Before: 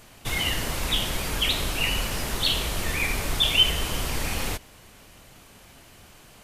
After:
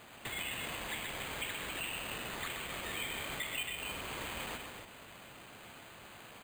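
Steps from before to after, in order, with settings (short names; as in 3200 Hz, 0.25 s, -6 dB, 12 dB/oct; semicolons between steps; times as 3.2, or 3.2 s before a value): HPF 93 Hz 6 dB/oct; tilt +2 dB/oct; compressor 6:1, threshold -35 dBFS, peak gain reduction 22 dB; air absorption 210 m; on a send: tapped delay 0.127/0.276 s -5.5/-6.5 dB; on the sum: careless resampling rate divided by 8×, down none, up hold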